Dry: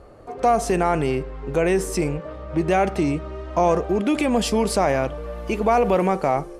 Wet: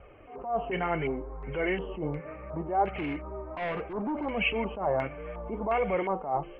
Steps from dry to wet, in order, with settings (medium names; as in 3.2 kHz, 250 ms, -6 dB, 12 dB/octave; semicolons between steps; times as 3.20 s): knee-point frequency compression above 2.1 kHz 4:1; in parallel at -2.5 dB: compression, threshold -25 dBFS, peak gain reduction 11.5 dB; on the sum: vibrato 4 Hz 27 cents; flange 0.68 Hz, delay 1.3 ms, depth 6.3 ms, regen -30%; 2.88–4.30 s: hard clipper -21.5 dBFS, distortion -14 dB; LFO low-pass square 1.4 Hz 950–2400 Hz; attacks held to a fixed rise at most 120 dB/s; trim -8.5 dB